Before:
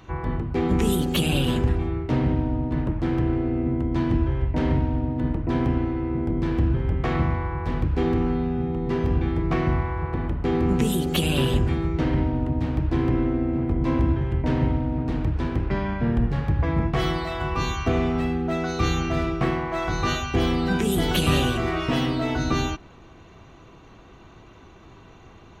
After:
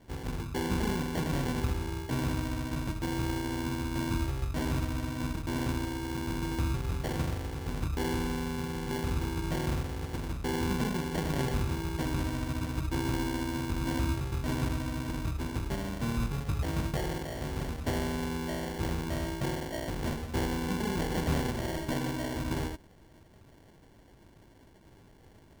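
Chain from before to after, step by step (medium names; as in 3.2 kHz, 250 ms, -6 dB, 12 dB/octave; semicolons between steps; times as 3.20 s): sample-and-hold 35×; trim -9 dB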